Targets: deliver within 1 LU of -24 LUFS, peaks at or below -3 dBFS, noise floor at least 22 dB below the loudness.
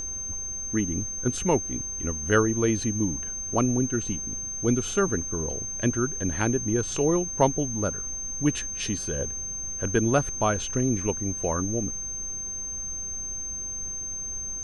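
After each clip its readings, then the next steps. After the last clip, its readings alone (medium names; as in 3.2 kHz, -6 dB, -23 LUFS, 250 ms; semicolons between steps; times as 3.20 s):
steady tone 6.3 kHz; tone level -31 dBFS; noise floor -34 dBFS; noise floor target -49 dBFS; loudness -26.5 LUFS; peak level -7.5 dBFS; loudness target -24.0 LUFS
-> band-stop 6.3 kHz, Q 30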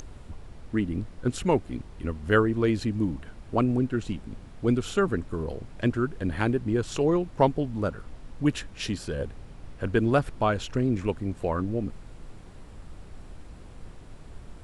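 steady tone not found; noise floor -46 dBFS; noise floor target -50 dBFS
-> noise print and reduce 6 dB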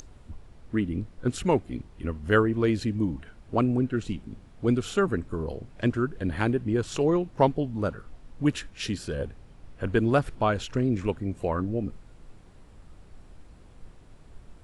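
noise floor -52 dBFS; loudness -27.5 LUFS; peak level -7.5 dBFS; loudness target -24.0 LUFS
-> trim +3.5 dB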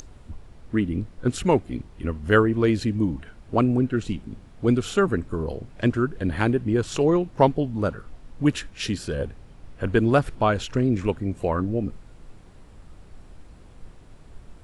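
loudness -24.0 LUFS; peak level -4.0 dBFS; noise floor -48 dBFS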